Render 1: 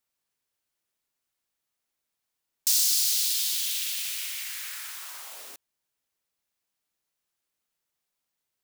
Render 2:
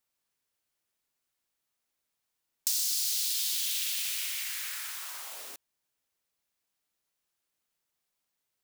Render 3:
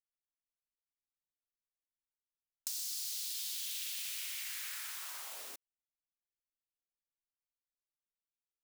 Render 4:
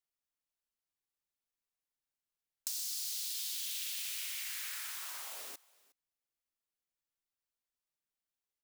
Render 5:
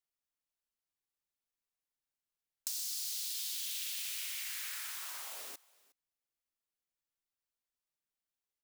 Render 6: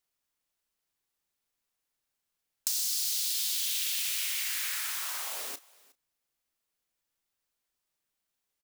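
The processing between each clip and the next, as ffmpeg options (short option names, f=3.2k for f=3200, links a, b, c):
-af "acompressor=threshold=-27dB:ratio=4"
-af "anlmdn=0.0398,asoftclip=type=tanh:threshold=-18.5dB,acompressor=threshold=-35dB:ratio=3,volume=-3.5dB"
-af "aecho=1:1:363:0.0668,volume=1dB"
-af anull
-filter_complex "[0:a]asplit=2[a][b];[b]adelay=32,volume=-13.5dB[c];[a][c]amix=inputs=2:normalize=0,volume=8dB"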